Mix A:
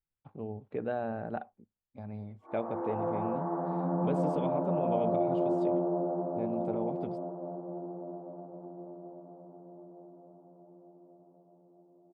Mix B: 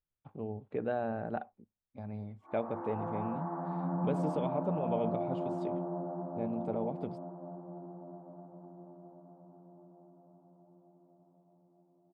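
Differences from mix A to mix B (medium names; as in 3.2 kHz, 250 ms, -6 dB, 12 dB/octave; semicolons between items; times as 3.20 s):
background: add peaking EQ 460 Hz -12.5 dB 0.89 oct; reverb: off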